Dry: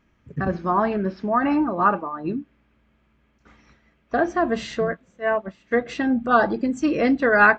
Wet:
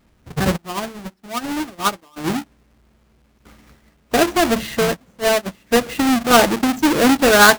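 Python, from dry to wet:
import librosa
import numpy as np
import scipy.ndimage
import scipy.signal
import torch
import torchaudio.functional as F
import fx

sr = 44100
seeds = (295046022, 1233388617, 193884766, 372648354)

y = fx.halfwave_hold(x, sr)
y = fx.upward_expand(y, sr, threshold_db=-25.0, expansion=2.5, at=(0.56, 2.16), fade=0.02)
y = y * librosa.db_to_amplitude(1.5)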